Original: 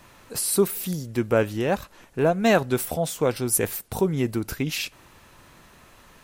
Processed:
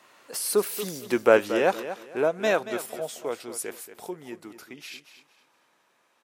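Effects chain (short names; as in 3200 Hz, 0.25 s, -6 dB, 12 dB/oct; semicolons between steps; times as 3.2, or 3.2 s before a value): Doppler pass-by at 1.27, 19 m/s, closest 9.9 m; HPF 380 Hz 12 dB/oct; high shelf 11000 Hz -8.5 dB; feedback echo 0.231 s, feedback 27%, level -12 dB; gain +5 dB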